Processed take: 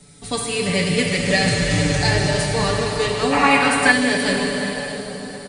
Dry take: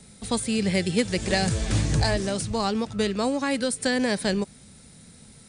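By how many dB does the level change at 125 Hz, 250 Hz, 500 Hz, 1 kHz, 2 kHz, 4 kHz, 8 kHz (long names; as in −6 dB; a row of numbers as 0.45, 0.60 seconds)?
+5.0, +4.0, +6.0, +10.0, +12.5, +8.0, +6.0 decibels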